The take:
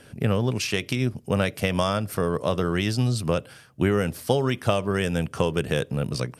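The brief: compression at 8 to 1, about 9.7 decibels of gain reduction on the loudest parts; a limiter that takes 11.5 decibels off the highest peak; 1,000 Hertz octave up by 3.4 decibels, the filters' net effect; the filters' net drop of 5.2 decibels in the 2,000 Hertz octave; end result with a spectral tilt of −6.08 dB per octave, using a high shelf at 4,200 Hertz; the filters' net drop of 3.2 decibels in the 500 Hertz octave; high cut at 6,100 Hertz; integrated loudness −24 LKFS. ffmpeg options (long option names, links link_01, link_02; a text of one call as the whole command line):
ffmpeg -i in.wav -af "lowpass=6100,equalizer=frequency=500:width_type=o:gain=-5.5,equalizer=frequency=1000:width_type=o:gain=8.5,equalizer=frequency=2000:width_type=o:gain=-8,highshelf=frequency=4200:gain=-7,acompressor=threshold=-28dB:ratio=8,volume=12dB,alimiter=limit=-12dB:level=0:latency=1" out.wav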